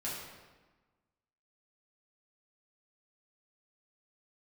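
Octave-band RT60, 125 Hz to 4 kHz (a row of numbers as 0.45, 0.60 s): 1.5, 1.5, 1.2, 1.3, 1.1, 0.95 s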